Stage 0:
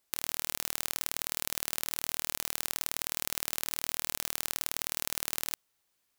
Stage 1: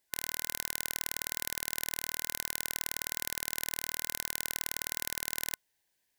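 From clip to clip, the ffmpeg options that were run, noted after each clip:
-af "superequalizer=10b=0.316:11b=1.58,volume=0.841"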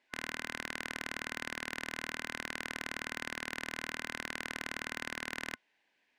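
-filter_complex "[0:a]adynamicsmooth=sensitivity=7:basefreq=4700,asplit=2[s0][s1];[s1]highpass=f=720:p=1,volume=7.94,asoftclip=type=tanh:threshold=0.237[s2];[s0][s2]amix=inputs=2:normalize=0,lowpass=f=2100:p=1,volume=0.501,equalizer=f=100:t=o:w=0.67:g=-5,equalizer=f=250:t=o:w=0.67:g=9,equalizer=f=2500:t=o:w=0.67:g=7,volume=0.794"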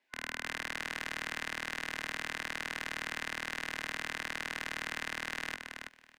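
-filter_complex "[0:a]acrossover=split=210|480|3900[s0][s1][s2][s3];[s1]alimiter=level_in=21.1:limit=0.0631:level=0:latency=1,volume=0.0473[s4];[s0][s4][s2][s3]amix=inputs=4:normalize=0,aecho=1:1:328|656|984:0.531|0.0849|0.0136,dynaudnorm=f=120:g=3:m=1.58,volume=0.708"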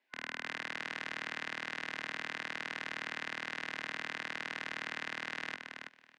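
-af "highpass=130,lowpass=5000,volume=0.841"

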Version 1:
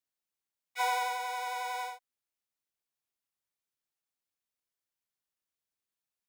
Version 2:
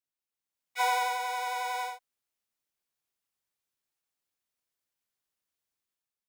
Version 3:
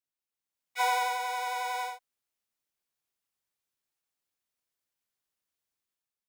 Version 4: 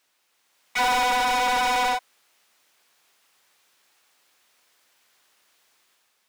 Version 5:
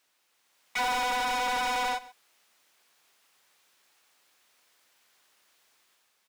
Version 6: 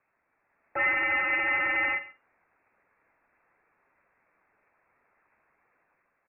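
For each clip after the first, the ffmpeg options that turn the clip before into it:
-af "dynaudnorm=f=110:g=9:m=2.51,volume=0.562"
-af anull
-filter_complex "[0:a]asplit=2[s0][s1];[s1]highpass=f=720:p=1,volume=56.2,asoftclip=type=tanh:threshold=0.168[s2];[s0][s2]amix=inputs=2:normalize=0,lowpass=f=3800:p=1,volume=0.501"
-af "acompressor=threshold=0.0282:ratio=1.5,aecho=1:1:133:0.112,volume=0.75"
-filter_complex "[0:a]aphaser=in_gain=1:out_gain=1:delay=2.2:decay=0.25:speed=1.5:type=triangular,asplit=2[s0][s1];[s1]adelay=47,volume=0.282[s2];[s0][s2]amix=inputs=2:normalize=0,lowpass=f=2400:t=q:w=0.5098,lowpass=f=2400:t=q:w=0.6013,lowpass=f=2400:t=q:w=0.9,lowpass=f=2400:t=q:w=2.563,afreqshift=-2800,volume=1.19"

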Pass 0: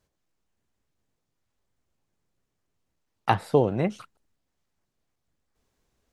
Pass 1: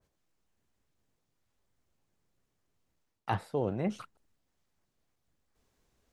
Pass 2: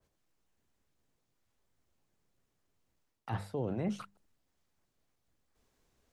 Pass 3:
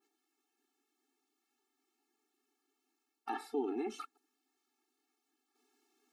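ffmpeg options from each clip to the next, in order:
-af "areverse,acompressor=threshold=0.0398:ratio=6,areverse,adynamicequalizer=threshold=0.00178:dfrequency=1900:dqfactor=0.7:tfrequency=1900:tqfactor=0.7:attack=5:release=100:ratio=0.375:range=2:mode=cutabove:tftype=highshelf"
-filter_complex "[0:a]bandreject=f=50:t=h:w=6,bandreject=f=100:t=h:w=6,bandreject=f=150:t=h:w=6,bandreject=f=200:t=h:w=6,acrossover=split=260[s0][s1];[s1]alimiter=level_in=2.24:limit=0.0631:level=0:latency=1:release=21,volume=0.447[s2];[s0][s2]amix=inputs=2:normalize=0"
-af "afftfilt=real='re*eq(mod(floor(b*sr/1024/230),2),1)':imag='im*eq(mod(floor(b*sr/1024/230),2),1)':win_size=1024:overlap=0.75,volume=1.58"

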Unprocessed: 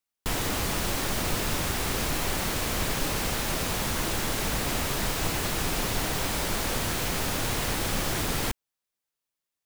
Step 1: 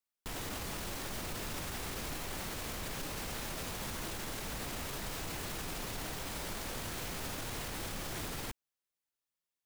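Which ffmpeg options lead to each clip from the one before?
-af "alimiter=level_in=1.19:limit=0.0631:level=0:latency=1:release=35,volume=0.841,volume=0.531"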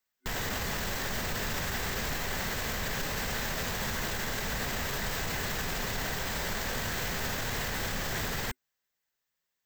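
-af "superequalizer=6b=0.501:11b=1.78:16b=0.251,volume=2.24"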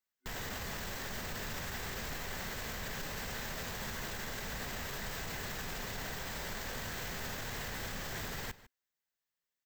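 -filter_complex "[0:a]asplit=2[s0][s1];[s1]adelay=151.6,volume=0.141,highshelf=f=4000:g=-3.41[s2];[s0][s2]amix=inputs=2:normalize=0,volume=0.422"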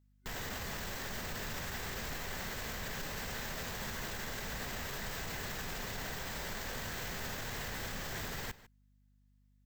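-af "aeval=exprs='val(0)+0.000447*(sin(2*PI*50*n/s)+sin(2*PI*2*50*n/s)/2+sin(2*PI*3*50*n/s)/3+sin(2*PI*4*50*n/s)/4+sin(2*PI*5*50*n/s)/5)':c=same"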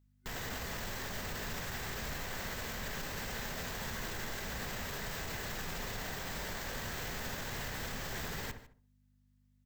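-filter_complex "[0:a]asplit=2[s0][s1];[s1]adelay=68,lowpass=f=1200:p=1,volume=0.447,asplit=2[s2][s3];[s3]adelay=68,lowpass=f=1200:p=1,volume=0.37,asplit=2[s4][s5];[s5]adelay=68,lowpass=f=1200:p=1,volume=0.37,asplit=2[s6][s7];[s7]adelay=68,lowpass=f=1200:p=1,volume=0.37[s8];[s0][s2][s4][s6][s8]amix=inputs=5:normalize=0"

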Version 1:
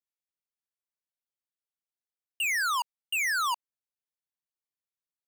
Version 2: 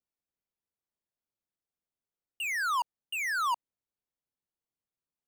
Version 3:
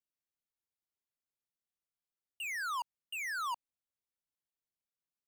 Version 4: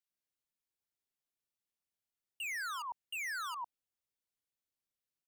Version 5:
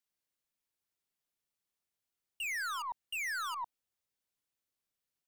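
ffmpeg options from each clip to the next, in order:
-af "tiltshelf=f=1100:g=7.5"
-af "equalizer=f=540:w=0.41:g=-3,volume=0.531"
-filter_complex "[0:a]acrossover=split=1100[s0][s1];[s0]adelay=100[s2];[s2][s1]amix=inputs=2:normalize=0"
-af "aeval=exprs='0.0266*(cos(1*acos(clip(val(0)/0.0266,-1,1)))-cos(1*PI/2))+0.000422*(cos(6*acos(clip(val(0)/0.0266,-1,1)))-cos(6*PI/2))':c=same,volume=1.33"

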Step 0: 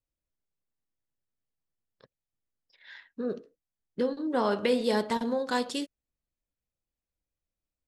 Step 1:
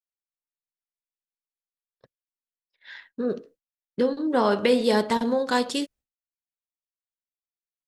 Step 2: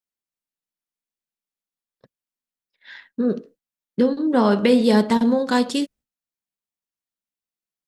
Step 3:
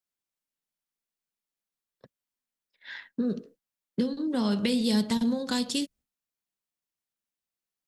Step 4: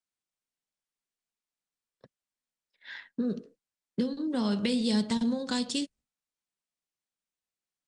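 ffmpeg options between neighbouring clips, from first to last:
-af "agate=range=0.0224:threshold=0.00251:ratio=3:detection=peak,volume=1.88"
-af "equalizer=f=210:w=1.5:g=8,volume=1.19"
-filter_complex "[0:a]acrossover=split=180|3000[s0][s1][s2];[s1]acompressor=threshold=0.0316:ratio=10[s3];[s0][s3][s2]amix=inputs=3:normalize=0"
-af "volume=0.841" -ar 22050 -c:a libmp3lame -b:a 96k

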